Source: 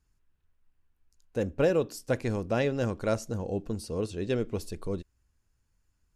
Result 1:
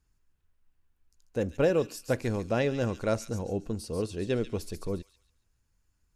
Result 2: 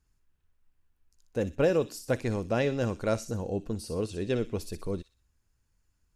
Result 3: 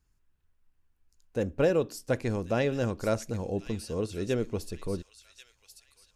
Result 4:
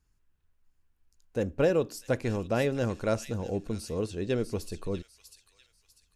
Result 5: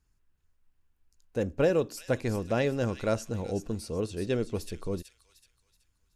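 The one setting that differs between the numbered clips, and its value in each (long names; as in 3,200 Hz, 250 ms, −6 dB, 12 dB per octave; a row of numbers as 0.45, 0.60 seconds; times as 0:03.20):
delay with a high-pass on its return, delay time: 140, 61, 1,089, 646, 376 milliseconds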